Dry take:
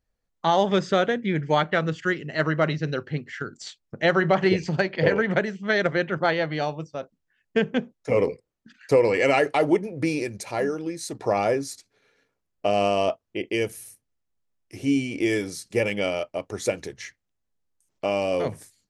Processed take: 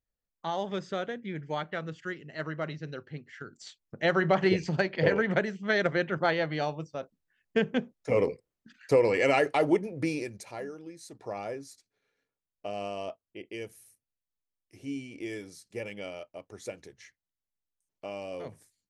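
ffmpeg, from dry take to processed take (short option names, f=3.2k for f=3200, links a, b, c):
-af "volume=-4dB,afade=t=in:st=3.31:d=1.01:silence=0.398107,afade=t=out:st=9.92:d=0.73:silence=0.316228"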